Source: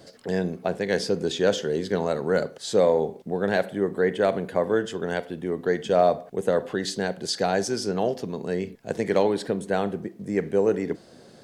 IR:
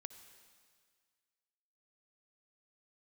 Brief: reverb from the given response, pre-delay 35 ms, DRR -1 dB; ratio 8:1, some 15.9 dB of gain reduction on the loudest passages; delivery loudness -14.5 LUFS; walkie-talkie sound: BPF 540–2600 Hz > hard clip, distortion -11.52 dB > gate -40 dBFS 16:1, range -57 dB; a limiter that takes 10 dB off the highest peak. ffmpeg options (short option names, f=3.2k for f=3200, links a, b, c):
-filter_complex "[0:a]acompressor=threshold=-32dB:ratio=8,alimiter=level_in=3.5dB:limit=-24dB:level=0:latency=1,volume=-3.5dB,asplit=2[a][b];[1:a]atrim=start_sample=2205,adelay=35[c];[b][c]afir=irnorm=-1:irlink=0,volume=6dB[d];[a][d]amix=inputs=2:normalize=0,highpass=540,lowpass=2.6k,asoftclip=type=hard:threshold=-35.5dB,agate=range=-57dB:threshold=-40dB:ratio=16,volume=28.5dB"